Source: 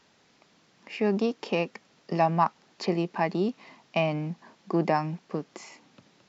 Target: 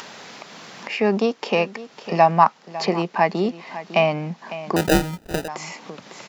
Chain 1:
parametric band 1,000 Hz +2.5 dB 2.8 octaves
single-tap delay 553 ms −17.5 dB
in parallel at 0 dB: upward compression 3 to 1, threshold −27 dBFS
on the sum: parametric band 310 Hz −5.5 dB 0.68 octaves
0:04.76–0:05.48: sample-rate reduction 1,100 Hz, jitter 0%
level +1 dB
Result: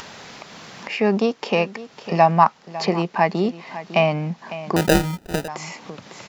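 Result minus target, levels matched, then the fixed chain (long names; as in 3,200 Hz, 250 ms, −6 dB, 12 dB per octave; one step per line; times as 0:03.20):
125 Hz band +2.5 dB
parametric band 1,000 Hz +2.5 dB 2.8 octaves
single-tap delay 553 ms −17.5 dB
in parallel at 0 dB: upward compression 3 to 1, threshold −27 dBFS
on the sum: high-pass filter 170 Hz 12 dB per octave
parametric band 310 Hz −5.5 dB 0.68 octaves
0:04.76–0:05.48: sample-rate reduction 1,100 Hz, jitter 0%
level +1 dB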